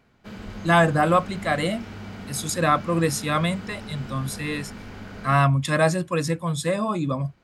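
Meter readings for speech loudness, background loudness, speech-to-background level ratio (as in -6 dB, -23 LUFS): -23.5 LUFS, -38.5 LUFS, 15.0 dB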